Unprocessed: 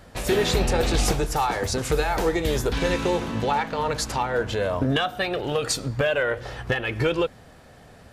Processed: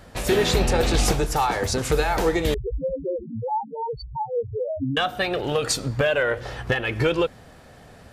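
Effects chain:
0:02.54–0:04.97: spectral peaks only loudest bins 2
level +1.5 dB

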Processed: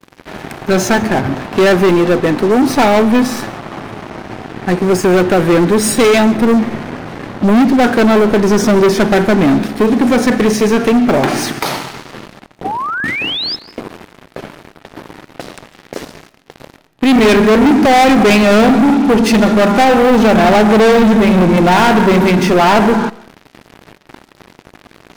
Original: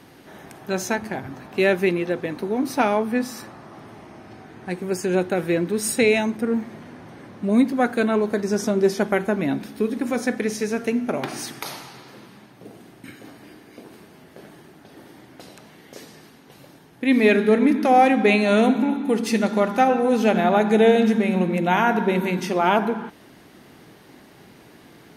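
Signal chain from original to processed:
noise gate with hold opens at −42 dBFS
high-shelf EQ 4,500 Hz −11 dB
leveller curve on the samples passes 5
sound drawn into the spectrogram rise, 0:12.64–0:13.56, 730–5,300 Hz −19 dBFS
convolution reverb RT60 0.35 s, pre-delay 105 ms, DRR 19.5 dB

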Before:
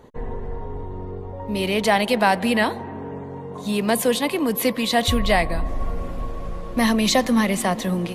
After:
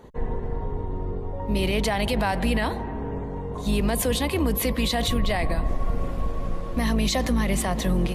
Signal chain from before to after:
sub-octave generator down 2 octaves, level +2 dB
brickwall limiter −15 dBFS, peak gain reduction 10.5 dB

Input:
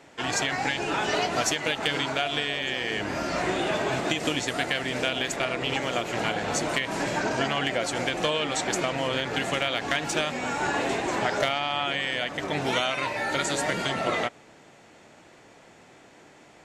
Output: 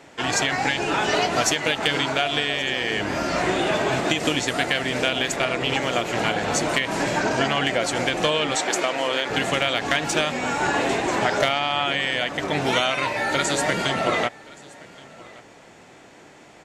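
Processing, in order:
0:08.56–0:09.30: high-pass filter 330 Hz 12 dB per octave
single-tap delay 1,124 ms −23 dB
level +4.5 dB

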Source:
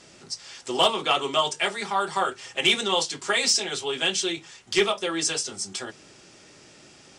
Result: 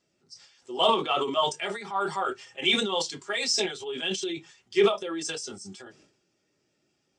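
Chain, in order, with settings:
transient designer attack −2 dB, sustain +10 dB
harmonic generator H 6 −28 dB, 7 −30 dB, 8 −34 dB, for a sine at −7 dBFS
every bin expanded away from the loudest bin 1.5 to 1
level −3 dB

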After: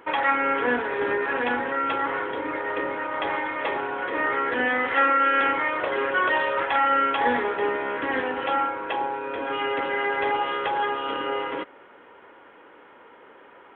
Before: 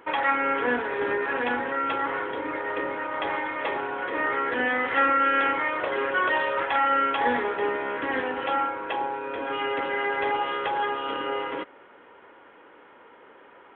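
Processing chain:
0:04.93–0:05.41: high-pass filter 250 Hz 12 dB per octave
level +1.5 dB

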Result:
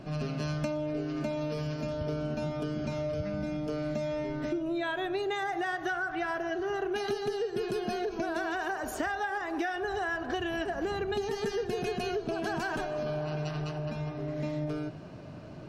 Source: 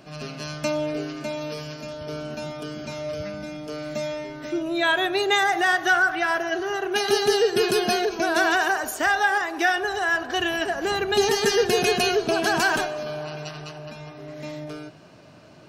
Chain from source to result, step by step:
spectral tilt −2.5 dB per octave
downward compressor 12 to 1, threshold −29 dBFS, peak gain reduction 17 dB

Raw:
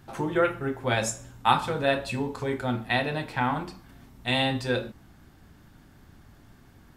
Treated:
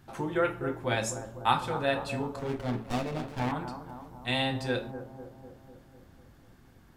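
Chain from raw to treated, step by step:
bucket-brigade delay 249 ms, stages 2,048, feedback 61%, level −11 dB
0:02.39–0:03.52: windowed peak hold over 17 samples
level −4 dB

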